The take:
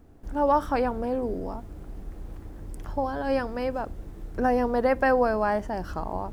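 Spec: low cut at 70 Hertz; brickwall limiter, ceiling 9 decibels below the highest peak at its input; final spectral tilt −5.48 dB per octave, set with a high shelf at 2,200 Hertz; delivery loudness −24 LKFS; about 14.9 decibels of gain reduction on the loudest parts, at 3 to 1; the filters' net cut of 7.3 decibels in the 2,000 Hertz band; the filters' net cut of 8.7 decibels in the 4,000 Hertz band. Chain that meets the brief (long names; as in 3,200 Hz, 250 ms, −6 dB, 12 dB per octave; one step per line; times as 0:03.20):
high-pass filter 70 Hz
parametric band 2,000 Hz −6.5 dB
high-shelf EQ 2,200 Hz −5.5 dB
parametric band 4,000 Hz −4 dB
downward compressor 3 to 1, threshold −40 dBFS
level +21 dB
brickwall limiter −15 dBFS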